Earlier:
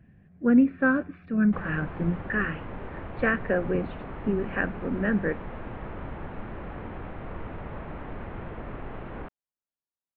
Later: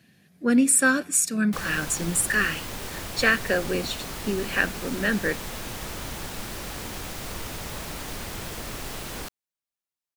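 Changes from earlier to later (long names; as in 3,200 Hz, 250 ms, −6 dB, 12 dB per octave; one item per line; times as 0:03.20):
speech: add high-pass filter 180 Hz
master: remove Gaussian smoothing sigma 4.7 samples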